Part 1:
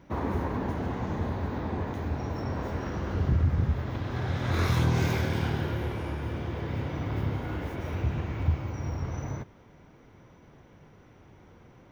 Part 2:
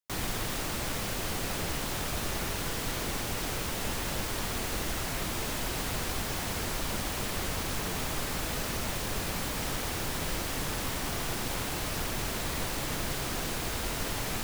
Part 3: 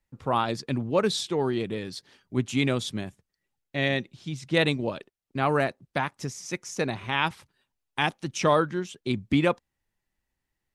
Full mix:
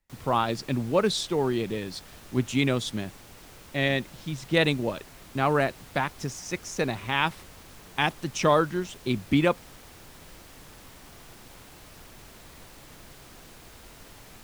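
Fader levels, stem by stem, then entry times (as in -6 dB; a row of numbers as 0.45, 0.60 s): off, -15.5 dB, +0.5 dB; off, 0.00 s, 0.00 s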